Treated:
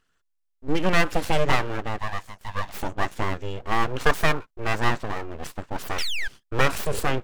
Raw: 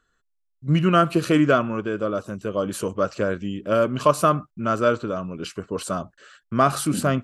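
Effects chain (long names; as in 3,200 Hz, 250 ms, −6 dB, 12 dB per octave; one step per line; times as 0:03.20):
0:01.98–0:02.78: high-pass filter 440 Hz 24 dB per octave
0:05.98–0:06.28: sound drawn into the spectrogram fall 750–3,000 Hz −23 dBFS
full-wave rectification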